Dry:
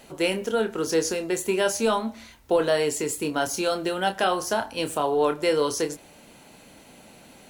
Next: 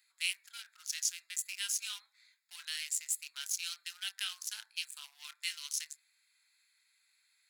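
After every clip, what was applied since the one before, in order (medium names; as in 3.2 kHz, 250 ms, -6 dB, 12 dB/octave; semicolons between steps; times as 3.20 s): local Wiener filter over 15 samples; inverse Chebyshev high-pass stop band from 500 Hz, stop band 70 dB; treble shelf 4.4 kHz +7 dB; trim -4.5 dB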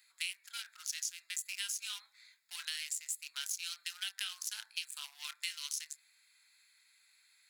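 compression 6:1, threshold -40 dBFS, peak gain reduction 12 dB; trim +5 dB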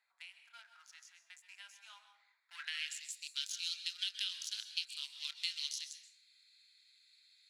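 band-pass sweep 720 Hz -> 3.9 kHz, 2.25–2.98 s; plate-style reverb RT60 0.62 s, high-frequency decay 0.7×, pre-delay 115 ms, DRR 9 dB; trim +5 dB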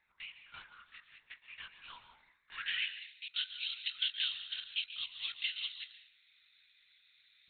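LPC vocoder at 8 kHz whisper; trim +5.5 dB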